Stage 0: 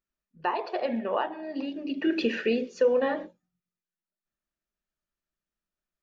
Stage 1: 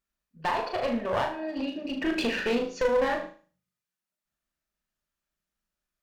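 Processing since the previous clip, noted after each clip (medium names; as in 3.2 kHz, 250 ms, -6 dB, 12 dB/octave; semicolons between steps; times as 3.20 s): peaking EQ 360 Hz -4.5 dB 0.95 oct; one-sided clip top -32.5 dBFS, bottom -21.5 dBFS; on a send: flutter echo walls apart 6.5 m, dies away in 0.39 s; on the sum: trim +3 dB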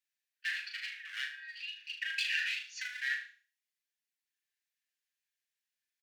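steep high-pass 1.6 kHz 72 dB/octave; treble shelf 5.6 kHz -4.5 dB; comb 6.9 ms, depth 50%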